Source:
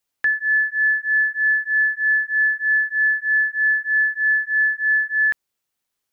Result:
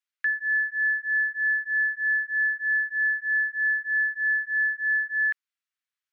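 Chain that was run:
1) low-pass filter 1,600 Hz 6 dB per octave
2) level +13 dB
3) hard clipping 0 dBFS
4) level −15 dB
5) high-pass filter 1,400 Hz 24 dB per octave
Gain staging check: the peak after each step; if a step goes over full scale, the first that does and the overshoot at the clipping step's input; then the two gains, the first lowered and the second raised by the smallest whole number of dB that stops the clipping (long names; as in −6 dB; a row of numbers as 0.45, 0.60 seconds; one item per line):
−16.0, −3.0, −3.0, −18.0, −19.5 dBFS
no step passes full scale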